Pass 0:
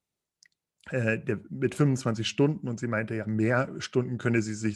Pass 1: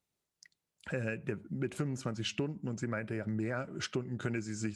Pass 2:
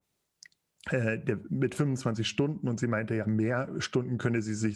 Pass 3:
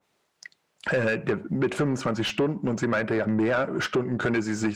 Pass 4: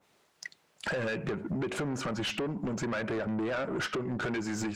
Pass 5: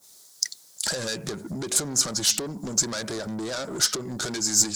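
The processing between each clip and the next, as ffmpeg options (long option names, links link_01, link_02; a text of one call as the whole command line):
ffmpeg -i in.wav -af "acompressor=threshold=-32dB:ratio=6" out.wav
ffmpeg -i in.wav -af "adynamicequalizer=threshold=0.00251:dfrequency=1600:dqfactor=0.7:tfrequency=1600:tqfactor=0.7:attack=5:release=100:ratio=0.375:range=2:mode=cutabove:tftype=highshelf,volume=7dB" out.wav
ffmpeg -i in.wav -filter_complex "[0:a]asplit=2[link_01][link_02];[link_02]highpass=frequency=720:poles=1,volume=22dB,asoftclip=type=tanh:threshold=-13.5dB[link_03];[link_01][link_03]amix=inputs=2:normalize=0,lowpass=frequency=1600:poles=1,volume=-6dB" out.wav
ffmpeg -i in.wav -af "acompressor=threshold=-30dB:ratio=6,asoftclip=type=tanh:threshold=-32dB,volume=4dB" out.wav
ffmpeg -i in.wav -af "aexciter=amount=12.7:drive=5.6:freq=4000" out.wav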